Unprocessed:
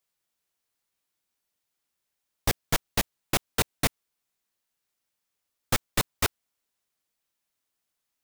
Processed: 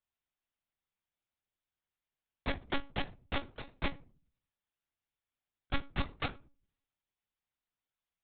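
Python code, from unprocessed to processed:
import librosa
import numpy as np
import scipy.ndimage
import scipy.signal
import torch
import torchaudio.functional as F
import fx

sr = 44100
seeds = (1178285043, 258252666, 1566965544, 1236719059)

y = fx.over_compress(x, sr, threshold_db=-28.0, ratio=-0.5, at=(3.44, 3.84))
y = fx.room_shoebox(y, sr, seeds[0], volume_m3=170.0, walls='furnished', distance_m=0.52)
y = fx.lpc_monotone(y, sr, seeds[1], pitch_hz=280.0, order=10)
y = y * librosa.db_to_amplitude(-8.0)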